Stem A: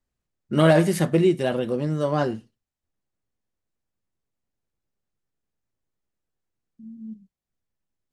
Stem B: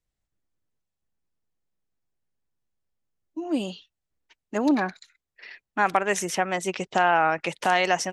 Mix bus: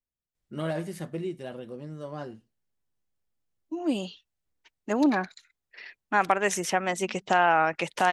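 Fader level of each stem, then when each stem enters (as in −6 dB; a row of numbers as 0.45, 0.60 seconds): −14.5, −1.0 decibels; 0.00, 0.35 seconds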